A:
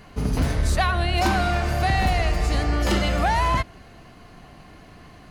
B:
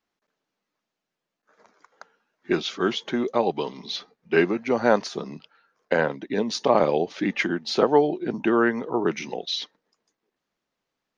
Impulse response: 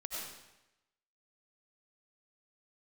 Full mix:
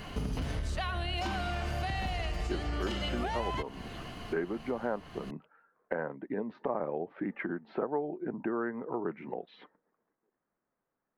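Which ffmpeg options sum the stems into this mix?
-filter_complex "[0:a]acrossover=split=7500[a][b];[b]acompressor=threshold=-48dB:ratio=4:attack=1:release=60[c];[a][c]amix=inputs=2:normalize=0,equalizer=f=3k:w=5.7:g=8,acompressor=threshold=-25dB:ratio=6,volume=3dB[d];[1:a]lowpass=f=1.7k:w=0.5412,lowpass=f=1.7k:w=1.3066,volume=-2dB[e];[d][e]amix=inputs=2:normalize=0,acompressor=threshold=-35dB:ratio=2.5"

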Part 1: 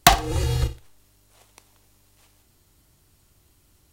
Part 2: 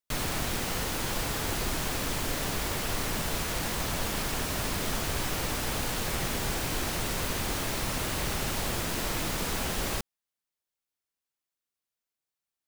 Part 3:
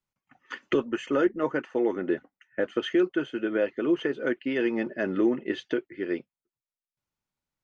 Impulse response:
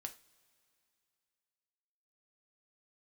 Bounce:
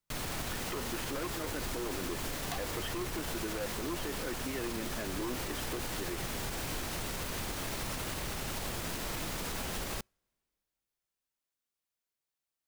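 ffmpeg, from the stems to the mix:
-filter_complex "[0:a]adelay=2450,volume=-16.5dB[a];[1:a]volume=-1.5dB,asplit=2[b][c];[c]volume=-23.5dB[d];[2:a]aeval=exprs='0.1*(abs(mod(val(0)/0.1+3,4)-2)-1)':c=same,volume=-3dB[e];[3:a]atrim=start_sample=2205[f];[d][f]afir=irnorm=-1:irlink=0[g];[a][b][e][g]amix=inputs=4:normalize=0,alimiter=level_in=3.5dB:limit=-24dB:level=0:latency=1:release=87,volume=-3.5dB"

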